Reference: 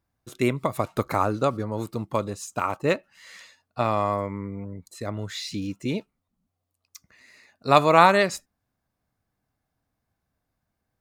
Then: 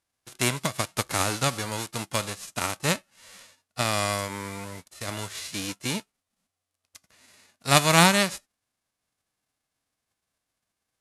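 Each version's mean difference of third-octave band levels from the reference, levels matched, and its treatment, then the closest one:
10.0 dB: spectral envelope flattened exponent 0.3
Butterworth low-pass 12,000 Hz 48 dB per octave
level −2 dB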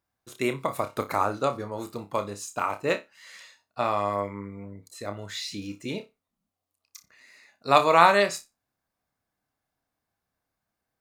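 3.0 dB: low-shelf EQ 260 Hz −10.5 dB
flutter between parallel walls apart 5.1 metres, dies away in 0.21 s
level −1 dB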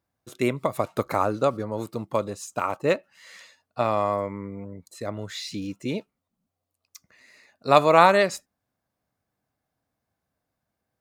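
1.0 dB: high-pass filter 110 Hz 6 dB per octave
parametric band 560 Hz +3.5 dB 0.65 octaves
level −1 dB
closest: third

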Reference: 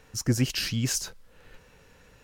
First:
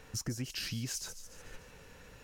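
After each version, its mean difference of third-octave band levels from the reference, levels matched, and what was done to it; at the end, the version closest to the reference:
8.5 dB: downward compressor 6 to 1, threshold −37 dBFS, peak gain reduction 17.5 dB
on a send: delay with a high-pass on its return 146 ms, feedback 53%, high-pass 5,300 Hz, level −8 dB
on the sum: level +1.5 dB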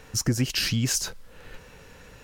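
4.0 dB: downward compressor 3 to 1, threshold −30 dBFS, peak gain reduction 9 dB
level +7.5 dB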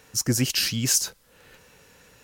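2.5 dB: high-pass filter 110 Hz 6 dB per octave
high-shelf EQ 4,900 Hz +9 dB
level +2 dB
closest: third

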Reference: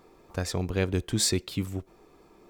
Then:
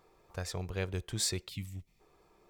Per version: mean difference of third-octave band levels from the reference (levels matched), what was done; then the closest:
2.5 dB: gain on a spectral selection 0:01.49–0:02.00, 300–1,800 Hz −16 dB
parametric band 260 Hz −10.5 dB 0.8 octaves
level −6.5 dB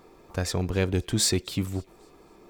1.5 dB: in parallel at −7.5 dB: gain into a clipping stage and back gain 28 dB
on the sum: delay with a high-pass on its return 266 ms, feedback 37%, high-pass 3,100 Hz, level −24 dB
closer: second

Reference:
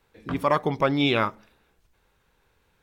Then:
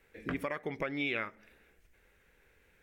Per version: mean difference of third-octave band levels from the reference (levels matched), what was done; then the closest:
5.0 dB: dynamic equaliser 1,900 Hz, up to +5 dB, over −34 dBFS, Q 0.7
downward compressor 16 to 1, threshold −31 dBFS, peak gain reduction 18 dB
graphic EQ with 10 bands 125 Hz −5 dB, 500 Hz +3 dB, 1,000 Hz −10 dB, 2,000 Hz +10 dB, 4,000 Hz −7 dB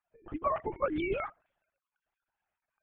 9.5 dB: three sine waves on the formant tracks
high-shelf EQ 2,300 Hz −10.5 dB
linear-prediction vocoder at 8 kHz whisper
level −8.5 dB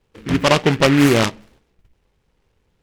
6.5 dB: tilt shelving filter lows +7.5 dB, about 1,100 Hz
noise gate −56 dBFS, range −7 dB
short delay modulated by noise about 1,800 Hz, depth 0.15 ms
level +4 dB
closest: first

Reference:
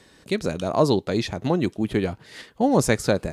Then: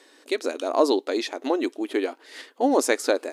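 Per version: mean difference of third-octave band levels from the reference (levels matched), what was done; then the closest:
6.5 dB: linear-phase brick-wall high-pass 250 Hz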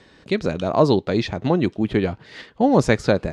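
2.0 dB: low-pass filter 4,400 Hz 12 dB per octave
level +3 dB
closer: second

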